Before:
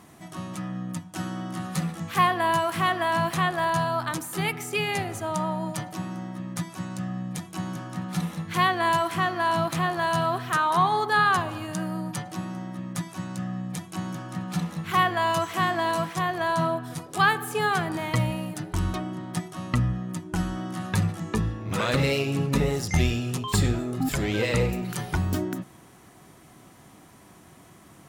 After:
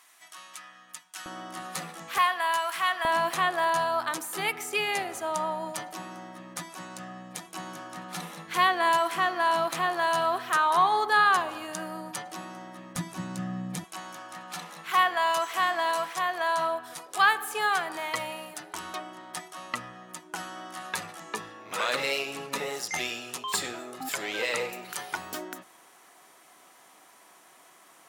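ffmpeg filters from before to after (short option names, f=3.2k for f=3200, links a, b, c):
-af "asetnsamples=n=441:p=0,asendcmd='1.26 highpass f 470;2.18 highpass f 1000;3.05 highpass f 410;12.96 highpass f 160;13.84 highpass f 630',highpass=1.5k"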